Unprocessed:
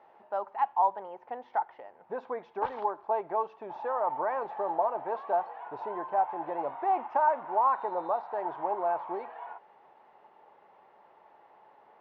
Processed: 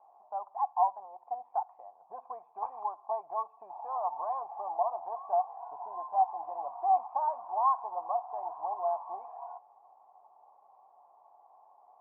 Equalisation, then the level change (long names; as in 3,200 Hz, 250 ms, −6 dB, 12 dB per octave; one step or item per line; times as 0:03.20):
dynamic equaliser 390 Hz, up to −4 dB, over −41 dBFS, Q 0.77
formant resonators in series a
+6.5 dB